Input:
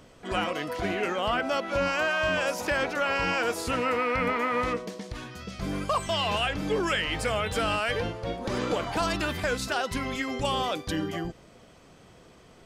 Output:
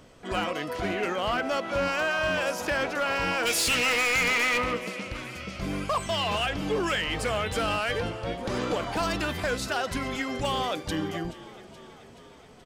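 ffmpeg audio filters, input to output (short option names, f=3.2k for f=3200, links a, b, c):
-filter_complex "[0:a]asplit=3[a][b][c];[a]afade=t=out:st=3.45:d=0.02[d];[b]highshelf=f=1.7k:t=q:w=1.5:g=12.5,afade=t=in:st=3.45:d=0.02,afade=t=out:st=4.57:d=0.02[e];[c]afade=t=in:st=4.57:d=0.02[f];[d][e][f]amix=inputs=3:normalize=0,asplit=7[g][h][i][j][k][l][m];[h]adelay=427,afreqshift=32,volume=-18dB[n];[i]adelay=854,afreqshift=64,volume=-22dB[o];[j]adelay=1281,afreqshift=96,volume=-26dB[p];[k]adelay=1708,afreqshift=128,volume=-30dB[q];[l]adelay=2135,afreqshift=160,volume=-34.1dB[r];[m]adelay=2562,afreqshift=192,volume=-38.1dB[s];[g][n][o][p][q][r][s]amix=inputs=7:normalize=0,volume=21dB,asoftclip=hard,volume=-21dB"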